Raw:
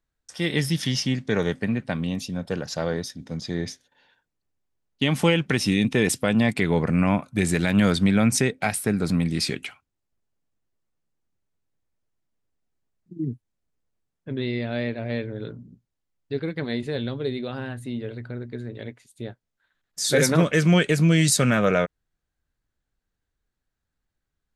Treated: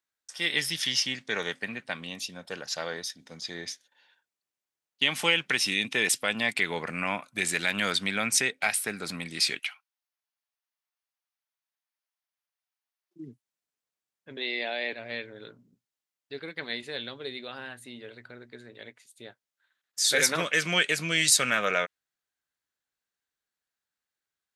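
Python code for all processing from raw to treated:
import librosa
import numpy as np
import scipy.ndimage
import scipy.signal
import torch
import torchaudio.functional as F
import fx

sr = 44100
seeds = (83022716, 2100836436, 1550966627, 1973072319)

y = fx.chain(x, sr, fx.highpass(hz=680.0, slope=24),
    fx.peak_eq(hz=7500.0, db=-9.5, octaves=0.27), at=(9.59, 13.16))
y = fx.chain(y, sr, fx.cabinet(low_hz=270.0, low_slope=24, high_hz=9700.0, hz=(760.0, 1300.0, 5000.0), db=(7, -9, -3)),
    fx.env_flatten(amount_pct=100), at=(14.37, 14.93))
y = fx.highpass(y, sr, hz=1400.0, slope=6)
y = fx.dynamic_eq(y, sr, hz=2700.0, q=0.76, threshold_db=-41.0, ratio=4.0, max_db=4)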